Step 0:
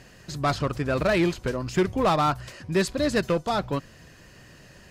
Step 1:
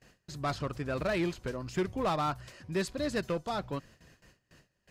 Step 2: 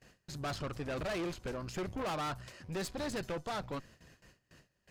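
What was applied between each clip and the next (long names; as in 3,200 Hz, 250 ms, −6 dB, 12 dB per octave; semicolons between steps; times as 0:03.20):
noise gate with hold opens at −39 dBFS; level −8.5 dB
tube saturation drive 37 dB, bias 0.7; level +3 dB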